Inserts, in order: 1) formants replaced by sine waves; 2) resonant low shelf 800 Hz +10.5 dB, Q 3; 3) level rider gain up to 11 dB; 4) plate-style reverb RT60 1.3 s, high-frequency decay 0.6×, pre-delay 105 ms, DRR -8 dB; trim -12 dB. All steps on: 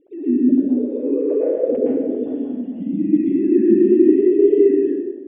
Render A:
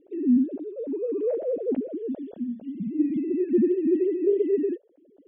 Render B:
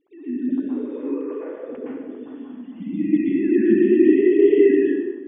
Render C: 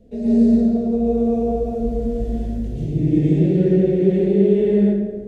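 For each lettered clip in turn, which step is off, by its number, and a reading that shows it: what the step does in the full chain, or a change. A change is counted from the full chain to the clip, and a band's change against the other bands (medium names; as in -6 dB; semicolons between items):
4, crest factor change -2.0 dB; 2, momentary loudness spread change +9 LU; 1, crest factor change -2.0 dB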